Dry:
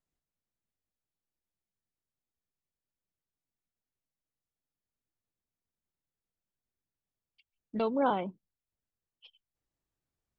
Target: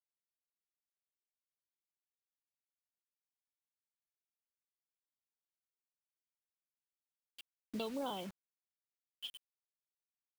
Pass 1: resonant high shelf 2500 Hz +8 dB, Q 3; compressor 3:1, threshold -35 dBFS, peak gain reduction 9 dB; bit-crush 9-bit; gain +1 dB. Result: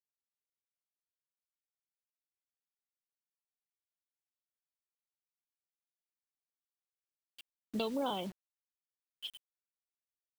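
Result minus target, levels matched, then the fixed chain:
compressor: peak gain reduction -5 dB
resonant high shelf 2500 Hz +8 dB, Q 3; compressor 3:1, threshold -42.5 dBFS, peak gain reduction 14 dB; bit-crush 9-bit; gain +1 dB

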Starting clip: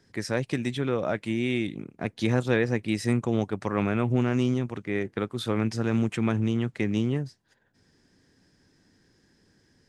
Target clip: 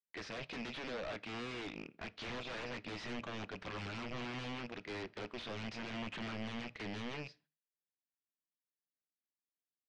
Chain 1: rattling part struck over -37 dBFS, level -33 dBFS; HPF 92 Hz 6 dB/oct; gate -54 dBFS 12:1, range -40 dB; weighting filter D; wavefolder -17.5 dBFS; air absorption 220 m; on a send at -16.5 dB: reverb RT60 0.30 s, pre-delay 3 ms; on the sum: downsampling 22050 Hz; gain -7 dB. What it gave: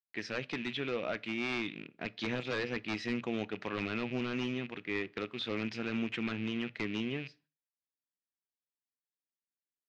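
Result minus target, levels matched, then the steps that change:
wavefolder: distortion -17 dB
change: wavefolder -28 dBFS

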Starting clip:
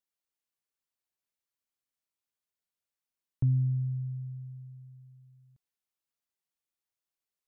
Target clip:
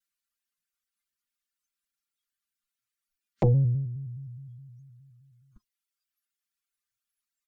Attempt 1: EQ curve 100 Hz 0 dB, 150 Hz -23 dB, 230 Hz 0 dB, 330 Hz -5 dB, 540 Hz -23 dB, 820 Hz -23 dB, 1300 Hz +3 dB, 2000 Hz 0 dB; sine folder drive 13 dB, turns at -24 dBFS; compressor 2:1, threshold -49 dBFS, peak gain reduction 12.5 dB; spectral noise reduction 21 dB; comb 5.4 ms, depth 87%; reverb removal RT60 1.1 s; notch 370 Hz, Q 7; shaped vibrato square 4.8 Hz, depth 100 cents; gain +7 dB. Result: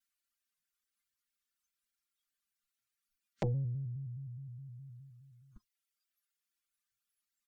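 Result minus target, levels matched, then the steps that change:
compressor: peak gain reduction +12.5 dB
remove: compressor 2:1, threshold -49 dBFS, peak gain reduction 12.5 dB

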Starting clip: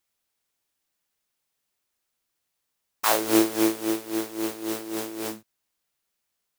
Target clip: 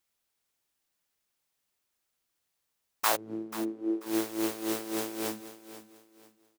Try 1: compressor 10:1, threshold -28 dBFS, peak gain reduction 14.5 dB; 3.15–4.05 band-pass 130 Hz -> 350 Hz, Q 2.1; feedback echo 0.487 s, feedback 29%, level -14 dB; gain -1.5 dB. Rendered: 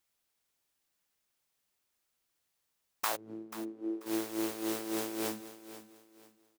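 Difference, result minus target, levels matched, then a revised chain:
compressor: peak gain reduction +7.5 dB
compressor 10:1, threshold -19.5 dBFS, peak gain reduction 6.5 dB; 3.15–4.05 band-pass 130 Hz -> 350 Hz, Q 2.1; feedback echo 0.487 s, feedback 29%, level -14 dB; gain -1.5 dB

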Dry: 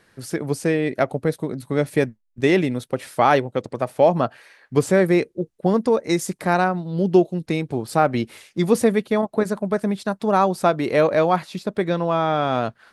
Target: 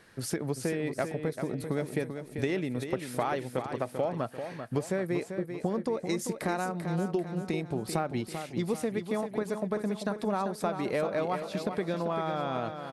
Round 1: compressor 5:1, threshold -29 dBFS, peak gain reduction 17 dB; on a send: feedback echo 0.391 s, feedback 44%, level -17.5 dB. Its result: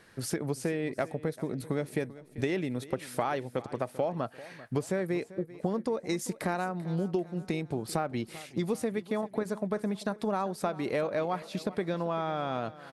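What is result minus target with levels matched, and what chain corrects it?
echo-to-direct -9.5 dB
compressor 5:1, threshold -29 dBFS, peak gain reduction 17 dB; on a send: feedback echo 0.391 s, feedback 44%, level -8 dB

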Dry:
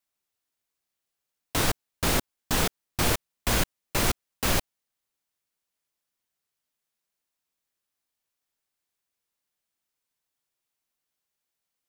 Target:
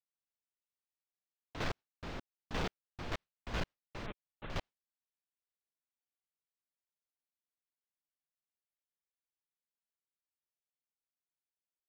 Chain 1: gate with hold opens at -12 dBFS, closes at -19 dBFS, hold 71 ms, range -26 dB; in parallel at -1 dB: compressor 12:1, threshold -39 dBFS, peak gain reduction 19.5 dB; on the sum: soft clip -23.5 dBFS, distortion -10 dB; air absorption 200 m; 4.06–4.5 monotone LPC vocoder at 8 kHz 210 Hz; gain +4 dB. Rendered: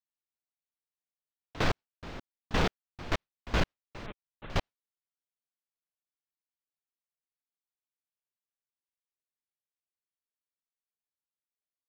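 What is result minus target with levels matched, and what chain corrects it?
soft clip: distortion -7 dB
gate with hold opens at -12 dBFS, closes at -19 dBFS, hold 71 ms, range -26 dB; in parallel at -1 dB: compressor 12:1, threshold -39 dBFS, peak gain reduction 19.5 dB; on the sum: soft clip -35 dBFS, distortion -3 dB; air absorption 200 m; 4.06–4.5 monotone LPC vocoder at 8 kHz 210 Hz; gain +4 dB

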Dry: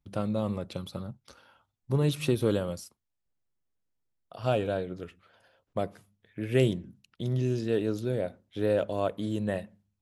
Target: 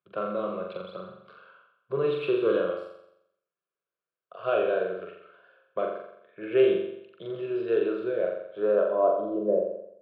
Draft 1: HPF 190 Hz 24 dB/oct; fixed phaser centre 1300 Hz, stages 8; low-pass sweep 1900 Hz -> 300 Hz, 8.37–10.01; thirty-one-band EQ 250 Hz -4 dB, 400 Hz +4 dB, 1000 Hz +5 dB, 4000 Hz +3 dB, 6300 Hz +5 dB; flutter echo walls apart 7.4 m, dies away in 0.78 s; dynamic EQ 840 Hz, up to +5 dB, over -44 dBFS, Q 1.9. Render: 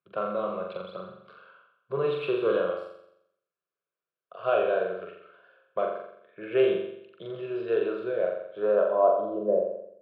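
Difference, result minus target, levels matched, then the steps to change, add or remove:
1000 Hz band +3.0 dB
change: dynamic EQ 300 Hz, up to +5 dB, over -44 dBFS, Q 1.9

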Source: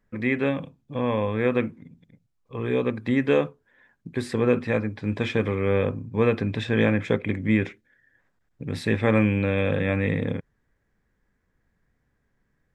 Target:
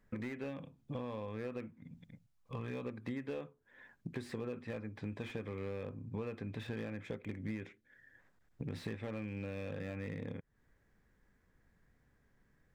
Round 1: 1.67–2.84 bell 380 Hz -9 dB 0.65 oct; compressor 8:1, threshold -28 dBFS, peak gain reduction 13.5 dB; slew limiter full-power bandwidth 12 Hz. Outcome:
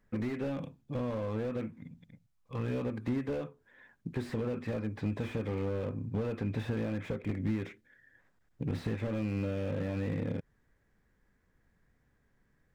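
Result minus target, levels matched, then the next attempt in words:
compressor: peak gain reduction -9 dB
1.67–2.84 bell 380 Hz -9 dB 0.65 oct; compressor 8:1, threshold -38.5 dBFS, peak gain reduction 22.5 dB; slew limiter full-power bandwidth 12 Hz

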